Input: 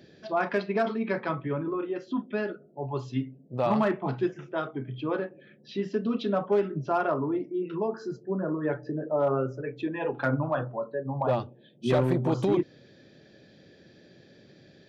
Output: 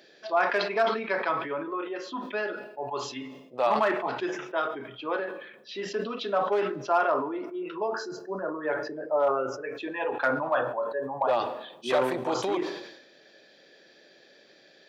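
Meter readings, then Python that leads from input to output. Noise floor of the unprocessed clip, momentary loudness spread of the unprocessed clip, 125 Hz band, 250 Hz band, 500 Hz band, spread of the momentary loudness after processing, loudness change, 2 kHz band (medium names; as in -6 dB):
-56 dBFS, 9 LU, -15.5 dB, -6.5 dB, +0.5 dB, 11 LU, +0.5 dB, +5.5 dB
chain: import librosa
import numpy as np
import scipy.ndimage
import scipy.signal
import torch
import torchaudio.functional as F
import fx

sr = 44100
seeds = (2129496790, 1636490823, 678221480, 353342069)

y = scipy.signal.sosfilt(scipy.signal.butter(2, 580.0, 'highpass', fs=sr, output='sos'), x)
y = fx.rev_plate(y, sr, seeds[0], rt60_s=1.1, hf_ratio=1.0, predelay_ms=0, drr_db=19.5)
y = fx.sustainer(y, sr, db_per_s=64.0)
y = F.gain(torch.from_numpy(y), 4.0).numpy()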